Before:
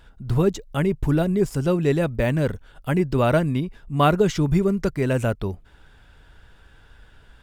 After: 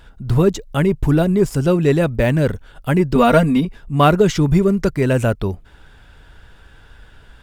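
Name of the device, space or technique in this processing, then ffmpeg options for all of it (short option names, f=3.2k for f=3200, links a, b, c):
parallel distortion: -filter_complex "[0:a]asettb=1/sr,asplit=3[a][b][c];[a]atrim=end=3.154[d];[b]atrim=start=3.15:end=3.65,asetpts=PTS-STARTPTS,afade=t=in:d=0.004:c=qsin,afade=t=out:st=0.496:d=0.004:c=qsin,aecho=1:1:4.3:0.95,atrim=end_sample=22050[e];[c]atrim=start=3.646[f];[d][e]acrossfade=d=0.004:c1=hsin:c2=qsin[g];[g][f]acrossfade=d=0.004:c1=qsin:c2=hsin,asplit=2[h][i];[i]asoftclip=type=hard:threshold=-18.5dB,volume=-13dB[j];[h][j]amix=inputs=2:normalize=0,volume=4dB"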